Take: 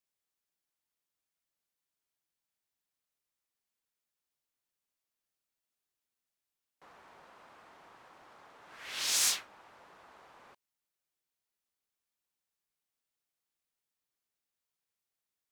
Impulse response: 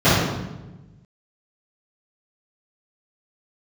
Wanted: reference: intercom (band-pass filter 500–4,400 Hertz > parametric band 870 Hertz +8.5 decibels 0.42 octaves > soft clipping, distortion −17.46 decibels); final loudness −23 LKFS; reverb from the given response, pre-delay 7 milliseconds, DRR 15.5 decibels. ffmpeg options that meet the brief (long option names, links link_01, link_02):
-filter_complex "[0:a]asplit=2[link_01][link_02];[1:a]atrim=start_sample=2205,adelay=7[link_03];[link_02][link_03]afir=irnorm=-1:irlink=0,volume=-41dB[link_04];[link_01][link_04]amix=inputs=2:normalize=0,highpass=500,lowpass=4400,equalizer=frequency=870:width_type=o:width=0.42:gain=8.5,asoftclip=threshold=-27.5dB,volume=14dB"